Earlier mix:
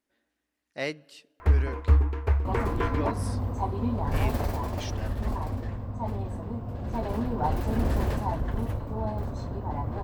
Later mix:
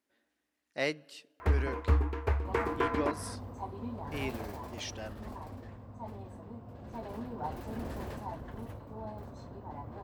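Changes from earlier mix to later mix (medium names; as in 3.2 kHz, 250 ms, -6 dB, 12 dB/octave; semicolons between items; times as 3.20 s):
second sound -9.5 dB; master: add high-pass 140 Hz 6 dB/octave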